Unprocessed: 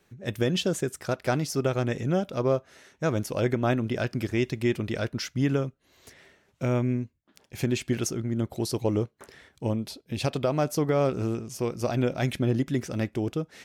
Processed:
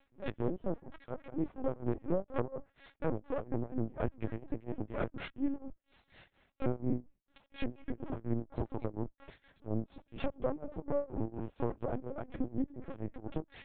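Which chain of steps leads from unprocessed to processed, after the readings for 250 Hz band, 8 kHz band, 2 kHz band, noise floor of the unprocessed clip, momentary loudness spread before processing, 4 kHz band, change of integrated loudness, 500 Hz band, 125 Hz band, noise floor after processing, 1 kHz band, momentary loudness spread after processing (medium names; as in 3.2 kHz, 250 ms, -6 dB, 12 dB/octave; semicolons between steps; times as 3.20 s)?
-9.5 dB, under -40 dB, -15.0 dB, -67 dBFS, 6 LU, -21.0 dB, -11.0 dB, -10.5 dB, -13.0 dB, -78 dBFS, -10.5 dB, 8 LU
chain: comb filter that takes the minimum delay 3.6 ms; low-pass that closes with the level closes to 840 Hz, closed at -24.5 dBFS; compression 5:1, threshold -27 dBFS, peak gain reduction 6.5 dB; tremolo 4.2 Hz, depth 95%; LPC vocoder at 8 kHz pitch kept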